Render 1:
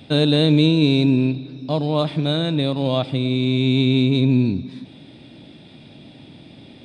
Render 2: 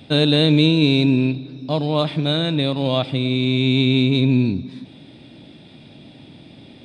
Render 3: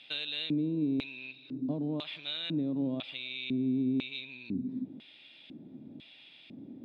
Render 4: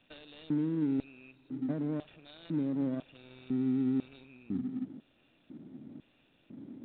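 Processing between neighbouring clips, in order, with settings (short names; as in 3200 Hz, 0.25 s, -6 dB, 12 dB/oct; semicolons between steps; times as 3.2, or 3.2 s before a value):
dynamic EQ 2500 Hz, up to +4 dB, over -34 dBFS, Q 0.71
compressor, threshold -23 dBFS, peak gain reduction 12 dB; LFO band-pass square 1 Hz 260–2800 Hz
median filter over 41 samples; µ-law 64 kbps 8000 Hz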